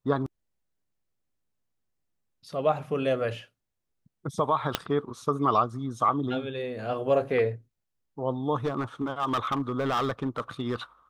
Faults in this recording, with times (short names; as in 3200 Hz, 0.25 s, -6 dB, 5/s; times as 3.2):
4.75 pop -8 dBFS
8.65–10.76 clipped -22.5 dBFS